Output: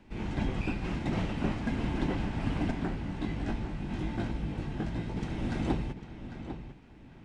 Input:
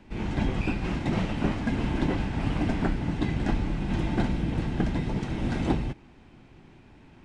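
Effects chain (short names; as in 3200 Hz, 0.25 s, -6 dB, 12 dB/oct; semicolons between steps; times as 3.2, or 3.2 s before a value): 2.71–5.17 chorus 1.3 Hz, delay 17.5 ms, depth 3.2 ms; darkening echo 0.799 s, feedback 25%, low-pass 4800 Hz, level -10 dB; gain -4.5 dB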